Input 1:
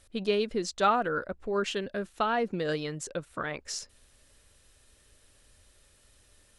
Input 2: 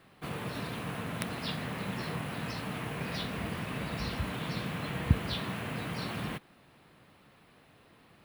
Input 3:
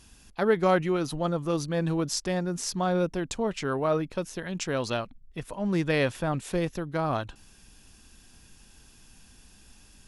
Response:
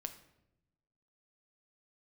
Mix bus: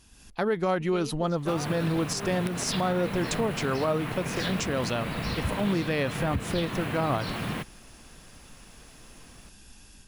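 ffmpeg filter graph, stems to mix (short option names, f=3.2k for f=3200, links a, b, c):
-filter_complex "[0:a]afwtdn=0.00794,adelay=650,volume=-16.5dB[a];[1:a]adelay=1250,volume=-1.5dB[b];[2:a]volume=-3dB[c];[a][b][c]amix=inputs=3:normalize=0,dynaudnorm=f=110:g=3:m=6dB,alimiter=limit=-17dB:level=0:latency=1:release=168"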